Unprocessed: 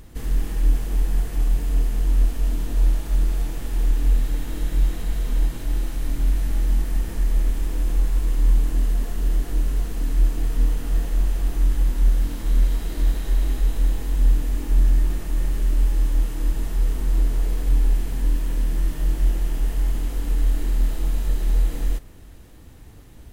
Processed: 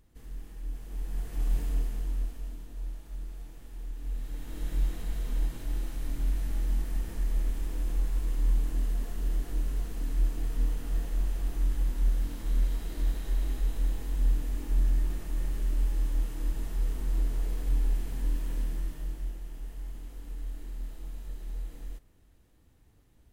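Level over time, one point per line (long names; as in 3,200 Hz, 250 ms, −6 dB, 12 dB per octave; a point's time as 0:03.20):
0:00.67 −19 dB
0:01.58 −6.5 dB
0:02.69 −19 dB
0:03.94 −19 dB
0:04.69 −8.5 dB
0:18.60 −8.5 dB
0:19.40 −17.5 dB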